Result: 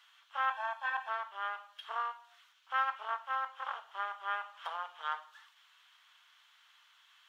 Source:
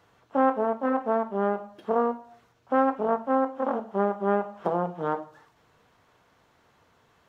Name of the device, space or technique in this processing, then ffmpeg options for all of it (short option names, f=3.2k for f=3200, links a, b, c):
headphones lying on a table: -filter_complex "[0:a]asettb=1/sr,asplit=3[a][b][c];[a]atrim=end=0.504[d];[b]atrim=start=0.5:end=1.09,asetpts=PTS-STARTPTS,afade=t=in:d=0.004:c=qsin,afade=t=out:st=0.586:d=0.004:c=qsin,aecho=1:1:1.2:0.9,atrim=end_sample=26019[e];[c]atrim=start=1.086[f];[d][e]acrossfade=d=0.004:c1=hsin:c2=qsin[g];[g][f]acrossfade=d=0.004:c1=qsin:c2=hsin,highpass=f=1.2k:w=0.5412,highpass=f=1.2k:w=1.3066,equalizer=f=3.2k:t=o:w=0.54:g=11"